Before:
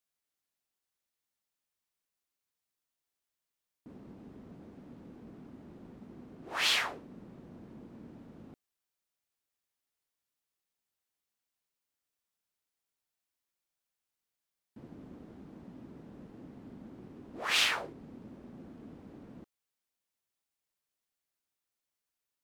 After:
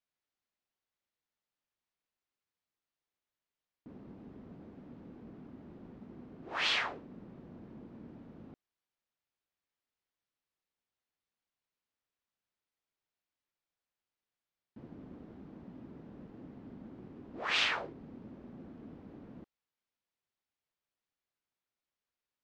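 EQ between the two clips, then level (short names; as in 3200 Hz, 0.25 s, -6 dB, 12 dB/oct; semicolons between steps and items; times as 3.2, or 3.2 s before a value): air absorption 140 m; 0.0 dB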